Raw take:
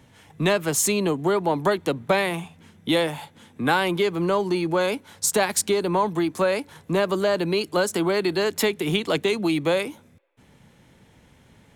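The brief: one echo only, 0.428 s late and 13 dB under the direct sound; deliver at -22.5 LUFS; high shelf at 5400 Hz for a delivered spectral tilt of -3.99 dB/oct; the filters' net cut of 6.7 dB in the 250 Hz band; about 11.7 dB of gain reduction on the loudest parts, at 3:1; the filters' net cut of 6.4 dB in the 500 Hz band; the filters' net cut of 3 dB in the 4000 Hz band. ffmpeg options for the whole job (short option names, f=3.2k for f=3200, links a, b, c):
-af "equalizer=f=250:t=o:g=-8.5,equalizer=f=500:t=o:g=-5.5,equalizer=f=4k:t=o:g=-5.5,highshelf=f=5.4k:g=4.5,acompressor=threshold=-33dB:ratio=3,aecho=1:1:428:0.224,volume=12dB"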